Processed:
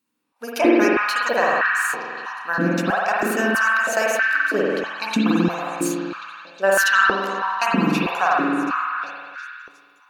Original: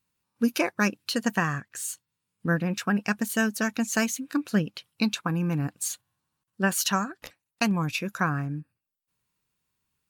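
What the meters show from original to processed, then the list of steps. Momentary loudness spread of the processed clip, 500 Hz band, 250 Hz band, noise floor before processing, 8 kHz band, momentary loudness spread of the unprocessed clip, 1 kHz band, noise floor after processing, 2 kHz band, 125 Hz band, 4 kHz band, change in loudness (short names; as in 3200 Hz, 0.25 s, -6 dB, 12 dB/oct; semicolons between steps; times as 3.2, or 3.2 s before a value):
14 LU, +12.0 dB, +4.5 dB, -84 dBFS, 0.0 dB, 9 LU, +12.0 dB, -55 dBFS, +12.0 dB, -1.5 dB, +4.5 dB, +7.5 dB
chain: delay with a stepping band-pass 0.362 s, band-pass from 1100 Hz, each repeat 0.7 oct, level -8 dB; spring tank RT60 2.2 s, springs 46 ms, chirp 50 ms, DRR -5 dB; stepped high-pass 3.1 Hz 270–1500 Hz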